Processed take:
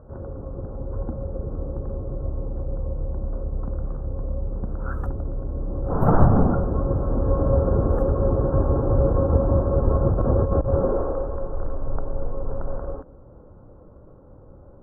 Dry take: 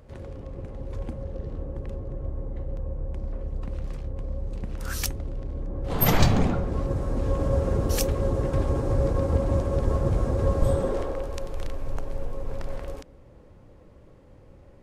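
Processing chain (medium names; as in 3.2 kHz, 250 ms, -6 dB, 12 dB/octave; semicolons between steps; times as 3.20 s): elliptic low-pass 1.4 kHz, stop band 40 dB; 10.12–10.73 s: compressor with a negative ratio -24 dBFS, ratio -0.5; trim +5 dB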